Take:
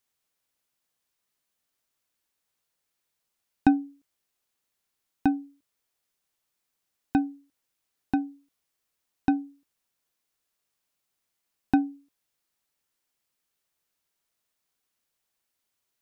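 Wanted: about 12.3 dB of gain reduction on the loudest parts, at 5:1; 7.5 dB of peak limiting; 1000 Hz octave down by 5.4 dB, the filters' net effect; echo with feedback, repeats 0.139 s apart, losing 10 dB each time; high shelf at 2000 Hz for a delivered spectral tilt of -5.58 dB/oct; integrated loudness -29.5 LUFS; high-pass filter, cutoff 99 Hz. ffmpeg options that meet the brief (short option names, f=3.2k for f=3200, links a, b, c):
-af "highpass=99,equalizer=f=1k:t=o:g=-6.5,highshelf=f=2k:g=-8.5,acompressor=threshold=-29dB:ratio=5,alimiter=limit=-23dB:level=0:latency=1,aecho=1:1:139|278|417|556:0.316|0.101|0.0324|0.0104,volume=11.5dB"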